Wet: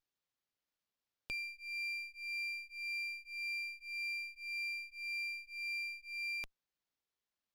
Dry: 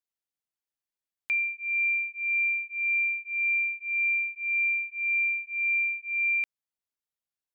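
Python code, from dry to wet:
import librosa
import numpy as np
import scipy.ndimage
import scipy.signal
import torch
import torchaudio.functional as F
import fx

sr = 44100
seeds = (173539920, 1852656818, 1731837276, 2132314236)

y = fx.curve_eq(x, sr, hz=(590.0, 860.0, 1300.0, 1800.0, 2600.0, 3700.0, 5300.0), db=(0, -26, -16, -25, -2, 6, 8))
y = fx.running_max(y, sr, window=5)
y = y * 10.0 ** (-5.0 / 20.0)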